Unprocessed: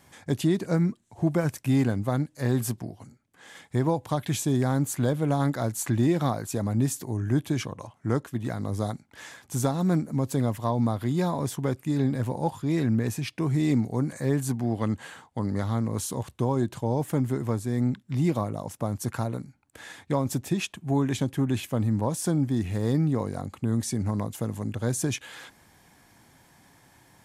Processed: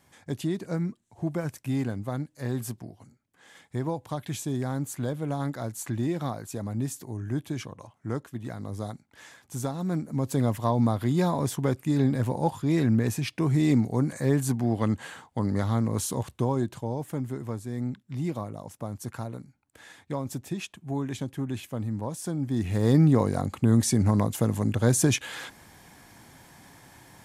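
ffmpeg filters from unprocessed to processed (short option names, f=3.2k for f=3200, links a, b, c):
-af "volume=13dB,afade=t=in:st=9.9:d=0.62:silence=0.446684,afade=t=out:st=16.19:d=0.8:silence=0.421697,afade=t=in:st=22.38:d=0.66:silence=0.266073"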